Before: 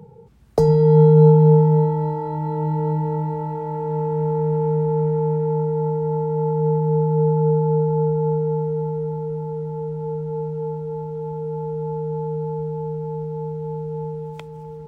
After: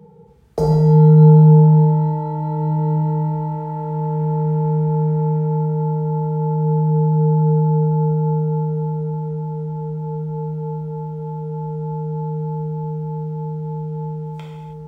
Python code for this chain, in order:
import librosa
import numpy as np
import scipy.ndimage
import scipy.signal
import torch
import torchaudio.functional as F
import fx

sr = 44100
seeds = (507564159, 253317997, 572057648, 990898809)

y = fx.rev_gated(x, sr, seeds[0], gate_ms=350, shape='falling', drr_db=-3.5)
y = y * librosa.db_to_amplitude(-5.0)